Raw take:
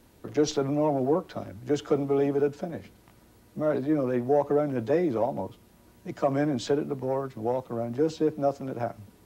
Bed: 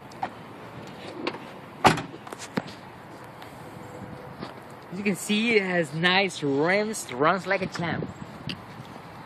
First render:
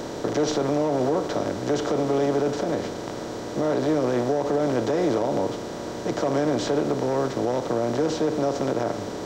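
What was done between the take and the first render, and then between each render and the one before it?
per-bin compression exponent 0.4; limiter -14.5 dBFS, peak gain reduction 6.5 dB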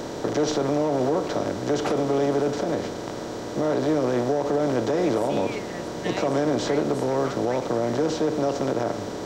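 add bed -14.5 dB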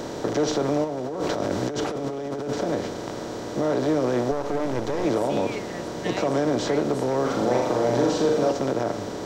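0.84–2.53 negative-ratio compressor -28 dBFS; 4.31–5.05 half-wave gain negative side -12 dB; 7.22–8.52 flutter echo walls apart 7 m, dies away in 0.74 s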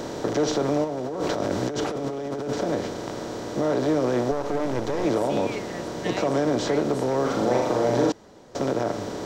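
8.12–8.55 room tone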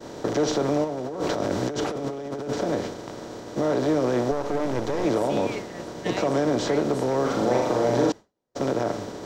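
expander -27 dBFS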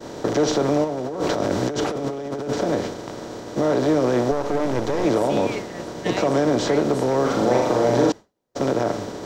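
gain +3.5 dB

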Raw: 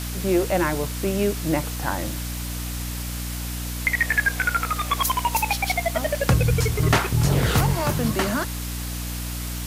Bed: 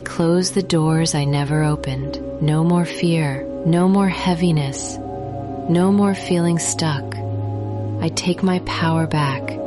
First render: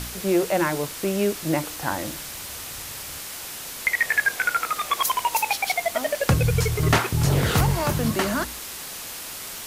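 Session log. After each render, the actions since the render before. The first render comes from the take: de-hum 60 Hz, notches 5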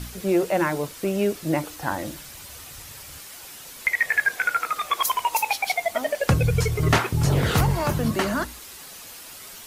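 denoiser 8 dB, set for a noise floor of -36 dBFS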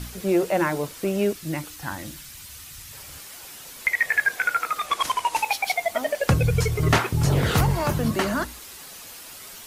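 1.33–2.93 bell 560 Hz -11 dB 1.9 oct; 4.86–5.44 CVSD 64 kbps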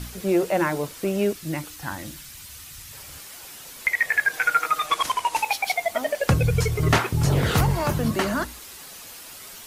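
4.33–5.01 comb 6.4 ms, depth 78%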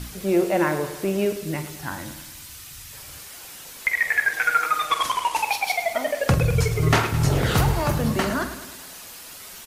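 doubler 46 ms -11 dB; feedback echo 0.106 s, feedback 57%, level -12 dB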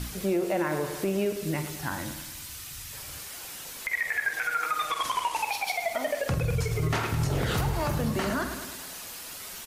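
compressor 2:1, threshold -26 dBFS, peak gain reduction 7 dB; limiter -18.5 dBFS, peak gain reduction 7 dB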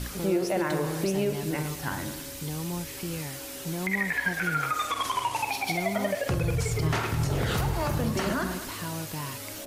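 add bed -17.5 dB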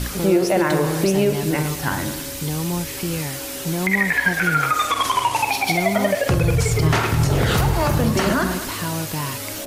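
gain +9 dB

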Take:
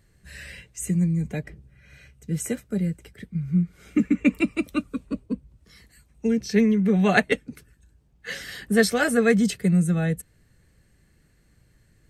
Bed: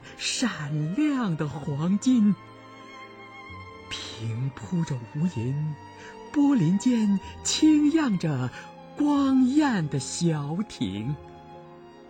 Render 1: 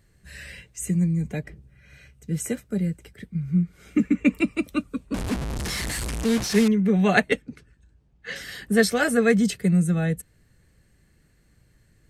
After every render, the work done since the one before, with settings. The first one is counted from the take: 5.14–6.68 delta modulation 64 kbps, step -22.5 dBFS; 7.42–8.36 air absorption 76 m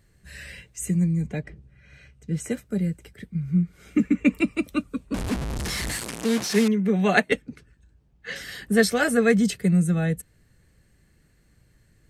1.26–2.51 air absorption 51 m; 5.97–7.3 HPF 180 Hz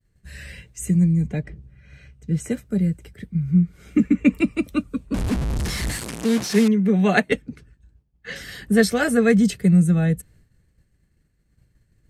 expander -52 dBFS; low shelf 250 Hz +7 dB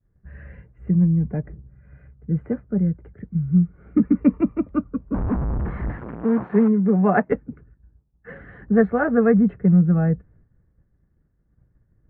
inverse Chebyshev low-pass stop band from 4800 Hz, stop band 60 dB; dynamic EQ 1000 Hz, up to +5 dB, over -38 dBFS, Q 1.6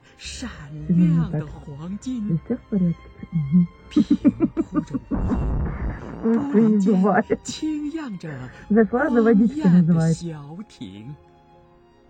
add bed -7 dB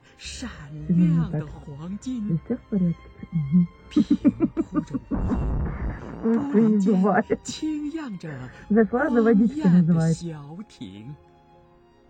gain -2 dB

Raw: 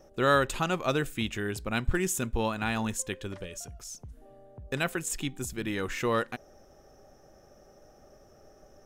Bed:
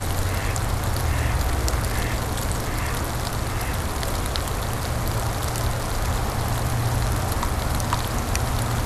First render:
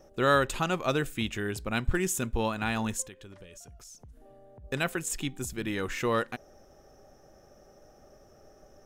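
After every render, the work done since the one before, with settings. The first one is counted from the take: 3.07–4.64 compressor 2.5:1, threshold -49 dBFS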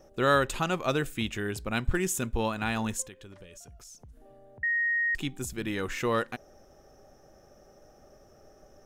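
4.63–5.15 bleep 1870 Hz -24 dBFS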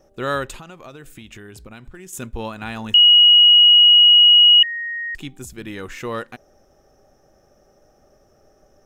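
0.55–2.13 compressor 8:1, threshold -35 dBFS; 2.94–4.63 bleep 2900 Hz -7 dBFS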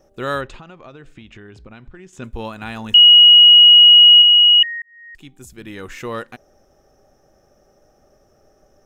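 0.41–2.24 air absorption 150 m; 2.92–4.22 comb 4.1 ms; 4.82–5.91 fade in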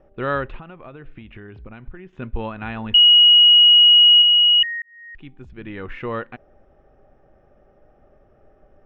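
LPF 2800 Hz 24 dB/oct; low shelf 74 Hz +7 dB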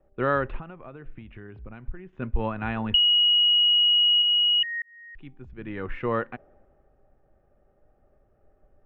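compressor 3:1, threshold -22 dBFS, peak gain reduction 9 dB; three-band expander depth 40%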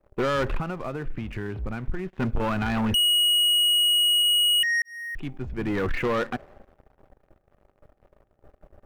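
limiter -19 dBFS, peak gain reduction 7.5 dB; sample leveller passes 3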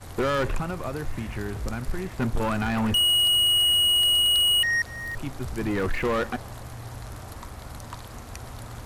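add bed -15.5 dB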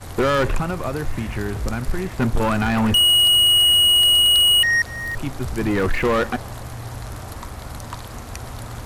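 gain +6 dB

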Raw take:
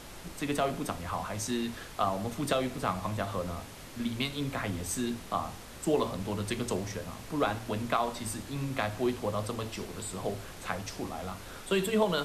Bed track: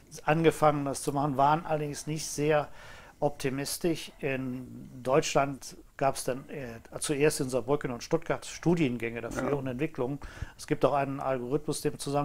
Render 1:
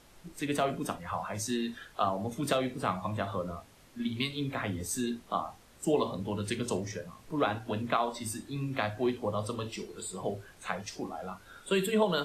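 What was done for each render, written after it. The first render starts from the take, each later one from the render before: noise print and reduce 12 dB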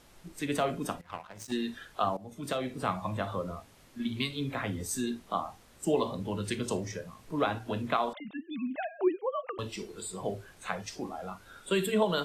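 1.01–1.52 power-law curve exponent 2; 2.17–2.86 fade in, from -15 dB; 8.13–9.59 sine-wave speech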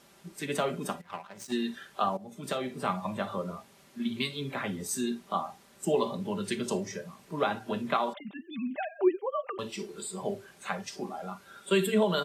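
HPF 120 Hz 12 dB/oct; comb 5.1 ms, depth 51%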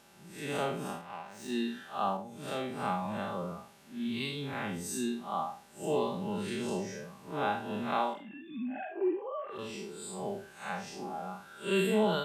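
time blur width 0.129 s; small resonant body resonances 830/1500/2700 Hz, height 8 dB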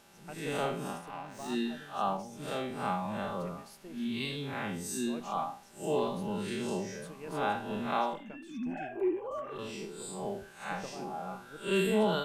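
add bed track -21 dB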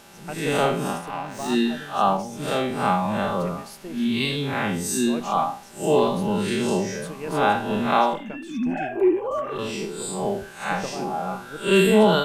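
gain +11.5 dB

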